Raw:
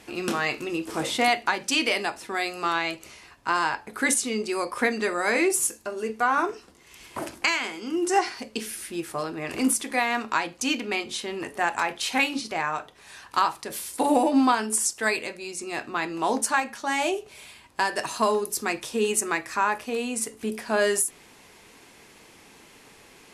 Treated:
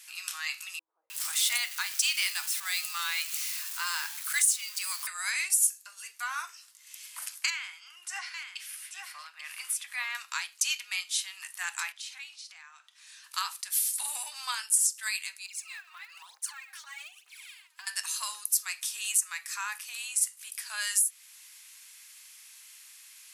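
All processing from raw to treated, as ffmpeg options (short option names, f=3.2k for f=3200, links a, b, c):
-filter_complex "[0:a]asettb=1/sr,asplit=3[a][b][c];[a]atrim=end=0.794[d];[b]atrim=start=0.79:end=5.07,asetpts=PTS-STARTPTS,afade=t=in:d=0.004:c=qsin,afade=t=out:st=4.276:d=0.004:c=qsin,aeval=exprs='val(0)+0.5*0.0224*sgn(val(0))':c=same,acrossover=split=410[e][f];[f]adelay=310[g];[e][g]amix=inputs=2:normalize=0,atrim=end_sample=188748[h];[c]atrim=start=5.066[i];[d][h]acrossfade=d=0.004:c1=hsin:c2=qsin[j];[j][i]acrossfade=d=0.004:c1=qsin:c2=hsin,asettb=1/sr,asplit=3[k][l][m];[k]atrim=end=7.504[n];[l]atrim=start=7.5:end=10.15,asetpts=PTS-STARTPTS,afade=t=in:d=0.004:c=qsin,afade=t=out:st=2.646:d=0.004:c=qsin,bass=f=250:g=-9,treble=f=4k:g=-14,aecho=1:1:838:0.447,atrim=end_sample=116865[o];[m]atrim=start=10.146[p];[n][o]acrossfade=d=0.004:c1=hsin:c2=qsin[q];[q][p]acrossfade=d=0.004:c1=qsin:c2=hsin,asettb=1/sr,asplit=3[r][s][t];[r]atrim=end=11.924[u];[s]atrim=start=11.92:end=13.24,asetpts=PTS-STARTPTS,afade=t=in:d=0.004:c=qsin,afade=t=out:st=1.316:d=0.004:c=qsin,lowpass=7k,acompressor=threshold=-48dB:ratio=2:attack=3.2:release=140:knee=1:detection=peak[v];[t]atrim=start=13.236[w];[u][v]acrossfade=d=0.004:c1=hsin:c2=qsin[x];[x][w]acrossfade=d=0.004:c1=qsin:c2=hsin,asettb=1/sr,asplit=3[y][z][aa];[y]atrim=end=15.464[ab];[z]atrim=start=15.46:end=17.87,asetpts=PTS-STARTPTS,afade=t=in:d=0.004:c=qsin,afade=t=out:st=2.406:d=0.004:c=qsin,bass=f=250:g=-8,treble=f=4k:g=-13,aphaser=in_gain=1:out_gain=1:delay=3.3:decay=0.74:speed=1.1:type=triangular,acompressor=threshold=-32dB:ratio=8:attack=3.2:release=140:knee=1:detection=peak[ac];[aa]atrim=start=17.866[ad];[ab][ac]acrossfade=d=0.004:c1=hsin:c2=qsin[ae];[ae][ad]acrossfade=d=0.004:c1=qsin:c2=hsin,highpass=f=1.1k:w=0.5412,highpass=f=1.1k:w=1.3066,aderivative,alimiter=limit=-18dB:level=0:latency=1:release=346,volume=5.5dB"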